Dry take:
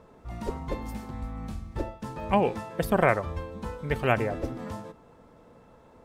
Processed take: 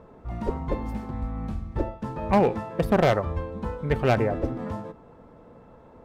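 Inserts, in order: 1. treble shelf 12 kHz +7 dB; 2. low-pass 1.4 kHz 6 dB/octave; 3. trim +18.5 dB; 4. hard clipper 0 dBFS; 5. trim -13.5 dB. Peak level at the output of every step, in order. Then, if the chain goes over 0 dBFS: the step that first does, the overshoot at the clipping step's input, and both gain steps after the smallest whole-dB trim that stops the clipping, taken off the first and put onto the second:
-7.0 dBFS, -9.5 dBFS, +9.0 dBFS, 0.0 dBFS, -13.5 dBFS; step 3, 9.0 dB; step 3 +9.5 dB, step 5 -4.5 dB

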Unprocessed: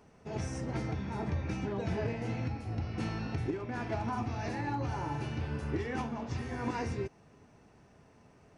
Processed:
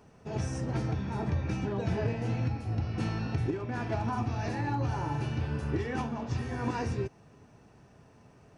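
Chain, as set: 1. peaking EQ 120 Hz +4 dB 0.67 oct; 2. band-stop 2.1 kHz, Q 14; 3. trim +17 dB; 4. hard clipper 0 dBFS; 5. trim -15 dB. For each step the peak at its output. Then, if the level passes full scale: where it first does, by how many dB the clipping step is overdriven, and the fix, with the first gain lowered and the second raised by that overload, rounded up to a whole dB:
-21.5 dBFS, -21.5 dBFS, -4.5 dBFS, -4.5 dBFS, -19.5 dBFS; nothing clips

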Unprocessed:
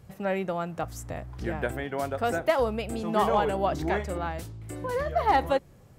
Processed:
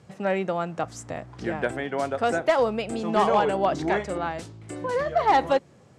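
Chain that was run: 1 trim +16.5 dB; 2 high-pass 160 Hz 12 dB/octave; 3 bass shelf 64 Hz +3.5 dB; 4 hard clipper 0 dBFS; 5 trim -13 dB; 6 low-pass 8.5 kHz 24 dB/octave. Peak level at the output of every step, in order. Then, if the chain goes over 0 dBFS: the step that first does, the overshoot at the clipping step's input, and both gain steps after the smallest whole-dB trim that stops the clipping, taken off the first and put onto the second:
+4.0 dBFS, +5.0 dBFS, +5.0 dBFS, 0.0 dBFS, -13.0 dBFS, -12.5 dBFS; step 1, 5.0 dB; step 1 +11.5 dB, step 5 -8 dB

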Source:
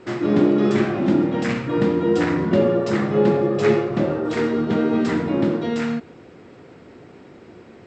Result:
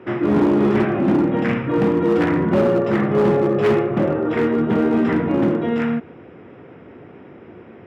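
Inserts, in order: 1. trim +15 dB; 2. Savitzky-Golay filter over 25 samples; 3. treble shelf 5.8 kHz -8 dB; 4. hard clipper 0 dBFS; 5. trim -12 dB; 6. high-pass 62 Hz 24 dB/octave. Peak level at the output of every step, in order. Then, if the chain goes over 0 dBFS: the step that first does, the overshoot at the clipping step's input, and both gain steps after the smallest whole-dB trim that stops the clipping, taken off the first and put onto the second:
+9.0 dBFS, +9.0 dBFS, +9.0 dBFS, 0.0 dBFS, -12.0 dBFS, -6.0 dBFS; step 1, 9.0 dB; step 1 +6 dB, step 5 -3 dB

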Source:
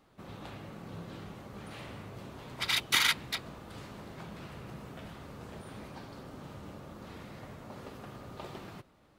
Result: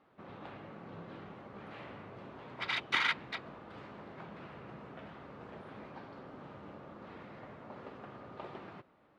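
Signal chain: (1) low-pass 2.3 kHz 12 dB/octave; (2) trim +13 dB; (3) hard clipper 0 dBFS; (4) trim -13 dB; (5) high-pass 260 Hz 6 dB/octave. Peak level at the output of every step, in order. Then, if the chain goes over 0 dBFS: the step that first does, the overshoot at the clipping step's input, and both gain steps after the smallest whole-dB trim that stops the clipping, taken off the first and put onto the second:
-16.0 dBFS, -3.0 dBFS, -3.0 dBFS, -16.0 dBFS, -15.5 dBFS; nothing clips

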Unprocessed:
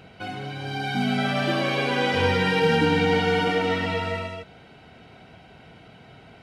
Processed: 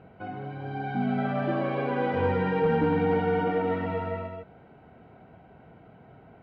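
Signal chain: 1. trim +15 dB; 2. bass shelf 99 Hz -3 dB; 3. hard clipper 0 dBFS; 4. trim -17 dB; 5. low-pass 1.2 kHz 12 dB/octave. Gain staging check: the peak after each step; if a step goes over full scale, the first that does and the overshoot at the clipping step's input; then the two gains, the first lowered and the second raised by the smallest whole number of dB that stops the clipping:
+5.5 dBFS, +5.5 dBFS, 0.0 dBFS, -17.0 dBFS, -16.5 dBFS; step 1, 5.5 dB; step 1 +9 dB, step 4 -11 dB

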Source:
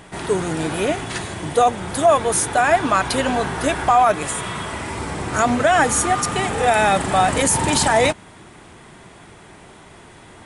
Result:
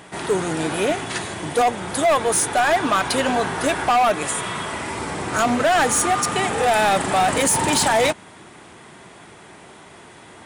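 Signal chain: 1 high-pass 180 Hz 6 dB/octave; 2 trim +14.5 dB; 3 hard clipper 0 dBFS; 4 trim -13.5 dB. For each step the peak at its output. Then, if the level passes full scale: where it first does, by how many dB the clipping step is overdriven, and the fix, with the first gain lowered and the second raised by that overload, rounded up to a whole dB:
-4.5 dBFS, +10.0 dBFS, 0.0 dBFS, -13.5 dBFS; step 2, 10.0 dB; step 2 +4.5 dB, step 4 -3.5 dB

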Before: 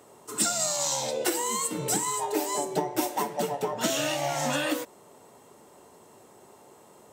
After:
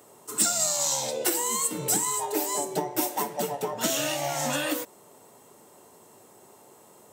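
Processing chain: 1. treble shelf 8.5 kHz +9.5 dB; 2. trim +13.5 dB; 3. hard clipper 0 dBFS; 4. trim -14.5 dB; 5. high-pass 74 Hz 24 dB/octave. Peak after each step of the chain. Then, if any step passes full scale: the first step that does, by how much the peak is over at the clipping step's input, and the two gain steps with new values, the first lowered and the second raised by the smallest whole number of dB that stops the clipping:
-8.0 dBFS, +5.5 dBFS, 0.0 dBFS, -14.5 dBFS, -12.5 dBFS; step 2, 5.5 dB; step 2 +7.5 dB, step 4 -8.5 dB

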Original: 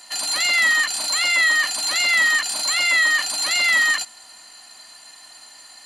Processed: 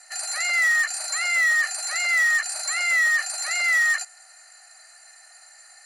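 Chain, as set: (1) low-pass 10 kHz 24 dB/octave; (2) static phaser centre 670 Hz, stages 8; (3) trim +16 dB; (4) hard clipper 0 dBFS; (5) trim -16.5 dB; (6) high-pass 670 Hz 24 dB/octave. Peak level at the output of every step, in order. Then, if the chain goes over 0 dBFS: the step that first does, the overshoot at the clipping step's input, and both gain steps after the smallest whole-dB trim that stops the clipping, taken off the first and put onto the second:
-8.0 dBFS, -11.0 dBFS, +5.0 dBFS, 0.0 dBFS, -16.5 dBFS, -12.5 dBFS; step 3, 5.0 dB; step 3 +11 dB, step 5 -11.5 dB

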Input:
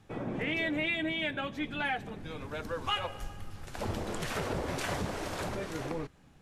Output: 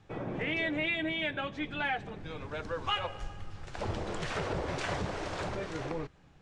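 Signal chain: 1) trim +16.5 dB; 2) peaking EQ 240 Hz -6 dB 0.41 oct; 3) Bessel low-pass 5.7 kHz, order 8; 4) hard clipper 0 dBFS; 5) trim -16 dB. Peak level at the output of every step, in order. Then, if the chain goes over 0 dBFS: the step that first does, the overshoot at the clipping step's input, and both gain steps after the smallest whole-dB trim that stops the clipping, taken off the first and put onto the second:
-3.0 dBFS, -3.0 dBFS, -3.5 dBFS, -3.5 dBFS, -19.5 dBFS; nothing clips

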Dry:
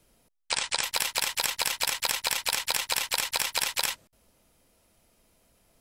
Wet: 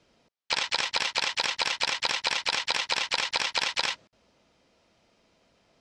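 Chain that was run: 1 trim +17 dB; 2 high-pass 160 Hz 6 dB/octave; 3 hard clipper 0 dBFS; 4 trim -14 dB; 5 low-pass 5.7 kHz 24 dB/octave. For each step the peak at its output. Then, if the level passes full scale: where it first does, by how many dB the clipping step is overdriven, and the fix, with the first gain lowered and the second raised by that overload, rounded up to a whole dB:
+9.0 dBFS, +9.0 dBFS, 0.0 dBFS, -14.0 dBFS, -12.0 dBFS; step 1, 9.0 dB; step 1 +8 dB, step 4 -5 dB

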